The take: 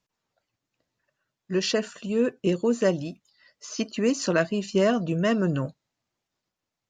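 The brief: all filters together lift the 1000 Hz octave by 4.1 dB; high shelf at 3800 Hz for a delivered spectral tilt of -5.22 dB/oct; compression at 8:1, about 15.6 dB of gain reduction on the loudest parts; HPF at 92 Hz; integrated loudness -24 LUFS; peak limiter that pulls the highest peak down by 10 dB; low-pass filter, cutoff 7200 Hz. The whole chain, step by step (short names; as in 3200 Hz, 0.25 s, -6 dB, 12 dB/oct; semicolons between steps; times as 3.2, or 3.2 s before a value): HPF 92 Hz; LPF 7200 Hz; bell 1000 Hz +6.5 dB; high shelf 3800 Hz -8 dB; compressor 8:1, threshold -33 dBFS; gain +17 dB; limiter -14 dBFS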